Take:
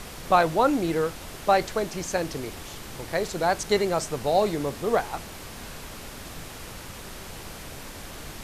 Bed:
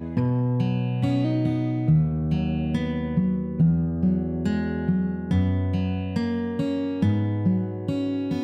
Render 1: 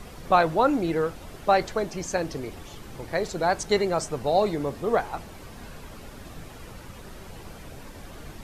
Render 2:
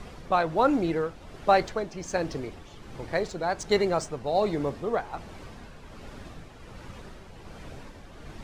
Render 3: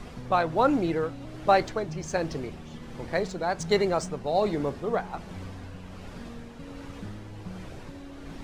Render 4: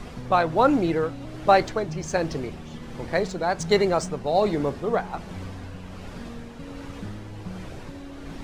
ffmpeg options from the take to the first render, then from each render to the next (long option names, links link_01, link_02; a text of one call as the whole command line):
ffmpeg -i in.wav -af "afftdn=noise_reduction=9:noise_floor=-41" out.wav
ffmpeg -i in.wav -af "tremolo=f=1.3:d=0.43,adynamicsmooth=sensitivity=7.5:basefreq=7300" out.wav
ffmpeg -i in.wav -i bed.wav -filter_complex "[1:a]volume=-19dB[link_01];[0:a][link_01]amix=inputs=2:normalize=0" out.wav
ffmpeg -i in.wav -af "volume=3.5dB" out.wav